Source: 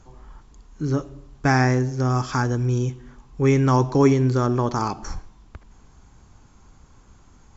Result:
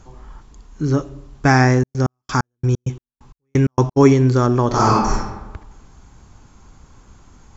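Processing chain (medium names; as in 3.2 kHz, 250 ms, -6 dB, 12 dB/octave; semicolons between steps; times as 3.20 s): 1.77–3.96 s: trance gate ".x..x..x" 131 bpm -60 dB; 4.67–5.14 s: reverb throw, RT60 1.1 s, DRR -5.5 dB; trim +5 dB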